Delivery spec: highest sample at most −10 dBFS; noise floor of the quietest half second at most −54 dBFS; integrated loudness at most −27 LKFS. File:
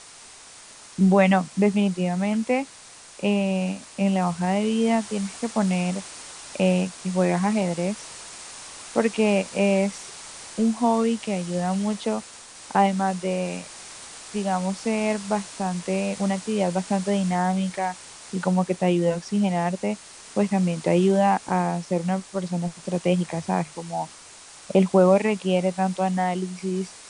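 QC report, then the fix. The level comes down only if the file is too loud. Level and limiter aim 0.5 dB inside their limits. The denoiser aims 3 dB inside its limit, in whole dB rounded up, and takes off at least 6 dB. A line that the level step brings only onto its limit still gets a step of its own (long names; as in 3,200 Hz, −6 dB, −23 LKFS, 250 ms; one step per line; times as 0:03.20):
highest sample −6.0 dBFS: out of spec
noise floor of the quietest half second −46 dBFS: out of spec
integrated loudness −24.0 LKFS: out of spec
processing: broadband denoise 8 dB, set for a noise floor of −46 dBFS
level −3.5 dB
brickwall limiter −10.5 dBFS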